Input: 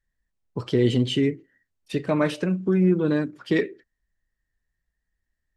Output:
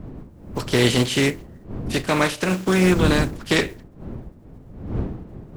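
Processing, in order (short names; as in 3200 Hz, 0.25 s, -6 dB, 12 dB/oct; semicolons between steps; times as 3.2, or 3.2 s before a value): spectral contrast lowered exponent 0.51; wind noise 210 Hz -33 dBFS; gain +2.5 dB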